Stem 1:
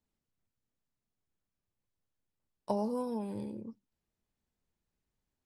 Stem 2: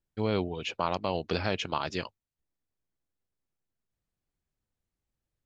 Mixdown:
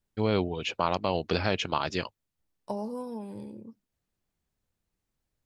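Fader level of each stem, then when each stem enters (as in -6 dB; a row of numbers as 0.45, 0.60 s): -1.5, +2.5 dB; 0.00, 0.00 s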